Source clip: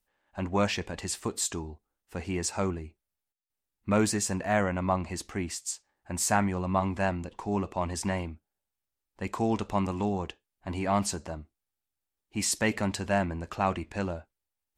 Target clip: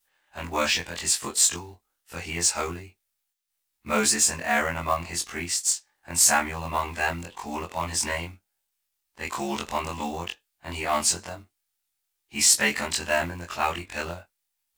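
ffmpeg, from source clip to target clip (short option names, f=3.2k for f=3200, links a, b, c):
-af "afftfilt=real='re':imag='-im':win_size=2048:overlap=0.75,tiltshelf=f=970:g=-8,acrusher=bits=5:mode=log:mix=0:aa=0.000001,volume=7.5dB"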